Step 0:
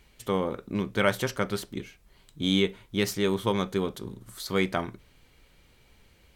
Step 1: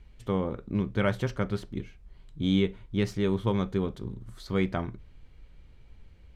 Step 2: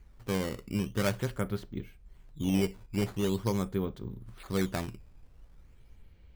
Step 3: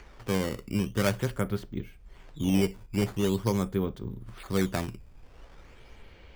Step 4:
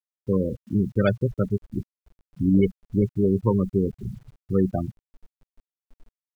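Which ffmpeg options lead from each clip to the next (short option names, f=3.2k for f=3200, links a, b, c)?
-af "aemphasis=mode=reproduction:type=bsi,volume=-4.5dB"
-af "acrusher=samples=10:mix=1:aa=0.000001:lfo=1:lforange=16:lforate=0.44,volume=-3dB"
-filter_complex "[0:a]bandreject=f=4k:w=22,acrossover=split=320|6200[a][b][c];[b]acompressor=mode=upward:threshold=-47dB:ratio=2.5[d];[a][d][c]amix=inputs=3:normalize=0,volume=3dB"
-af "afftfilt=real='re*gte(hypot(re,im),0.0891)':imag='im*gte(hypot(re,im),0.0891)':win_size=1024:overlap=0.75,acrusher=bits=10:mix=0:aa=0.000001,volume=6dB"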